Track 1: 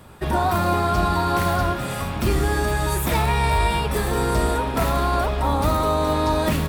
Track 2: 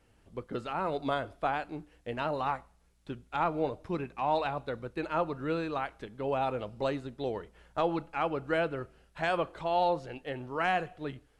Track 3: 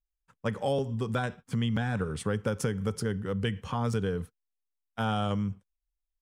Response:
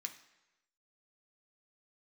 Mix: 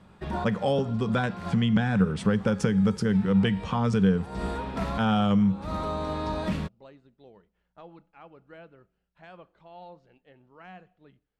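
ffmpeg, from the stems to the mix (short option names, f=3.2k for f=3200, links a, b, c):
-filter_complex "[0:a]volume=-10.5dB,asplit=2[a][b];[b]volume=-21.5dB[c];[1:a]volume=-19dB[d];[2:a]volume=2.5dB,asplit=3[e][f][g];[f]volume=-7.5dB[h];[g]apad=whole_len=299164[i];[a][i]sidechaincompress=threshold=-50dB:ratio=4:attack=16:release=154[j];[3:a]atrim=start_sample=2205[k];[c][h]amix=inputs=2:normalize=0[l];[l][k]afir=irnorm=-1:irlink=0[m];[j][d][e][m]amix=inputs=4:normalize=0,lowpass=5.5k,equalizer=f=190:w=5.4:g=12.5"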